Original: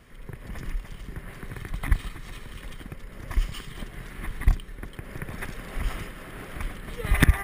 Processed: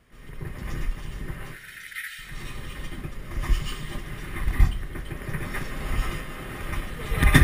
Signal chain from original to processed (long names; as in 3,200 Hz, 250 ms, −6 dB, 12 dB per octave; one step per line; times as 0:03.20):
0:01.40–0:02.19: linear-phase brick-wall high-pass 1,300 Hz
convolution reverb, pre-delay 117 ms, DRR −10 dB
level −6.5 dB